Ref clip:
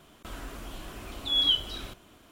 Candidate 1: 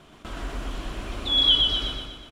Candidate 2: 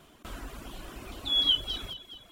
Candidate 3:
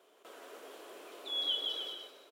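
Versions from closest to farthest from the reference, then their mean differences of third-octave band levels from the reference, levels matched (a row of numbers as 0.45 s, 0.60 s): 2, 1, 3; 2.0 dB, 3.5 dB, 6.0 dB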